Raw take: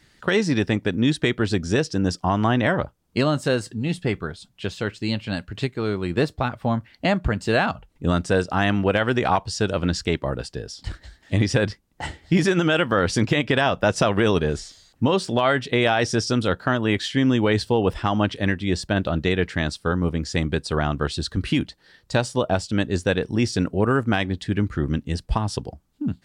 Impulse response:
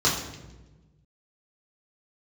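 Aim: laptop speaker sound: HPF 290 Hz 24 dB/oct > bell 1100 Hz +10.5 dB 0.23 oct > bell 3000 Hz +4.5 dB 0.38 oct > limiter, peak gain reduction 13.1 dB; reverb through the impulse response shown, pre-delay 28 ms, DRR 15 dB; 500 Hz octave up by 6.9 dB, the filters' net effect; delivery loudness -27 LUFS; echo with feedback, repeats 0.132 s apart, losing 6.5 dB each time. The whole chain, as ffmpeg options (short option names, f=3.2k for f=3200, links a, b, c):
-filter_complex "[0:a]equalizer=f=500:t=o:g=8.5,aecho=1:1:132|264|396|528|660|792:0.473|0.222|0.105|0.0491|0.0231|0.0109,asplit=2[a][b];[1:a]atrim=start_sample=2205,adelay=28[c];[b][c]afir=irnorm=-1:irlink=0,volume=-30dB[d];[a][d]amix=inputs=2:normalize=0,highpass=f=290:w=0.5412,highpass=f=290:w=1.3066,equalizer=f=1.1k:t=o:w=0.23:g=10.5,equalizer=f=3k:t=o:w=0.38:g=4.5,volume=-3dB,alimiter=limit=-17dB:level=0:latency=1"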